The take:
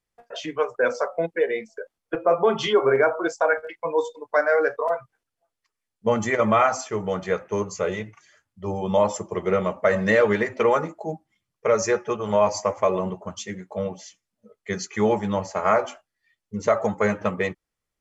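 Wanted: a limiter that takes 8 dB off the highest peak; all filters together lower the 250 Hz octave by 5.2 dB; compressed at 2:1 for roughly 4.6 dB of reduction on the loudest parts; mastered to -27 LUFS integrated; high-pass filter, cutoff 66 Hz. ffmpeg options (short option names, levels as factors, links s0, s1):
-af "highpass=66,equalizer=f=250:t=o:g=-7.5,acompressor=threshold=0.0708:ratio=2,volume=1.58,alimiter=limit=0.178:level=0:latency=1"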